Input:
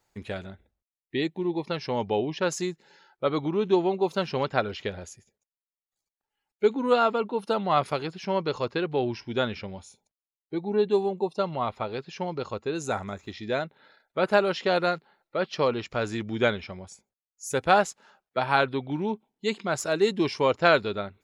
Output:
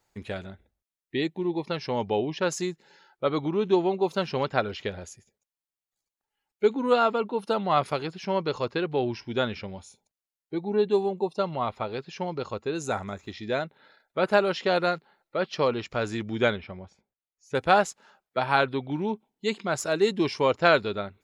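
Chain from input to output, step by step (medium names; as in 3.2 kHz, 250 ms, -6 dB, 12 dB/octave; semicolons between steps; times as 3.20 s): 16.56–17.55 s: distance through air 260 m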